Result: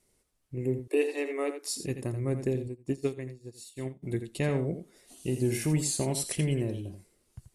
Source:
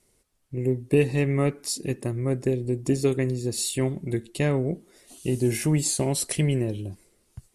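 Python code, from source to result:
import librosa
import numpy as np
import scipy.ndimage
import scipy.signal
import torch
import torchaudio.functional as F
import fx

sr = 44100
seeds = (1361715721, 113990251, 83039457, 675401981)

y = fx.steep_highpass(x, sr, hz=290.0, slope=96, at=(0.79, 1.72))
y = y + 10.0 ** (-9.5 / 20.0) * np.pad(y, (int(84 * sr / 1000.0), 0))[:len(y)]
y = fx.upward_expand(y, sr, threshold_db=-33.0, expansion=2.5, at=(2.67, 4.02), fade=0.02)
y = F.gain(torch.from_numpy(y), -5.0).numpy()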